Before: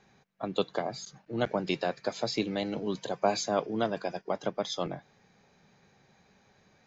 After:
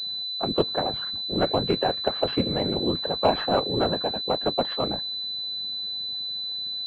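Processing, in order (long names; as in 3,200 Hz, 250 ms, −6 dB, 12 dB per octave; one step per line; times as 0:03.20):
random phases in short frames
switching amplifier with a slow clock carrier 4,000 Hz
level +6 dB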